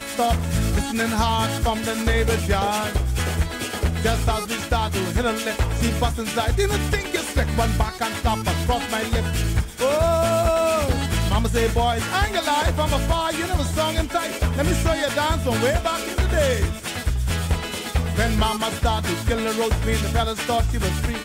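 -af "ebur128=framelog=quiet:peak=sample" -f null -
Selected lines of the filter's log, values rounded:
Integrated loudness:
  I:         -22.2 LUFS
  Threshold: -32.2 LUFS
Loudness range:
  LRA:         2.2 LU
  Threshold: -42.2 LUFS
  LRA low:   -23.0 LUFS
  LRA high:  -20.9 LUFS
Sample peak:
  Peak:      -11.6 dBFS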